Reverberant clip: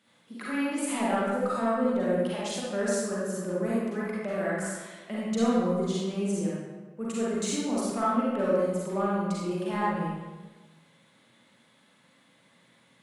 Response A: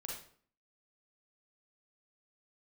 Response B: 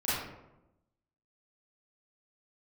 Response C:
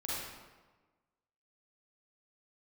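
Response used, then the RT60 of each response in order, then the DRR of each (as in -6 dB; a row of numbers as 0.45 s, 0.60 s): C; 0.50 s, 0.95 s, 1.3 s; -2.5 dB, -12.0 dB, -8.0 dB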